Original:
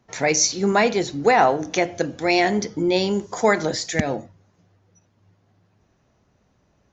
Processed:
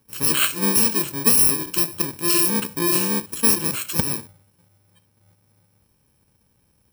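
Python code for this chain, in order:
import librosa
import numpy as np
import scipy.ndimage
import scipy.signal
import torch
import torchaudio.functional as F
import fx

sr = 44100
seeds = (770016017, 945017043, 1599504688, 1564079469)

y = fx.bit_reversed(x, sr, seeds[0], block=64)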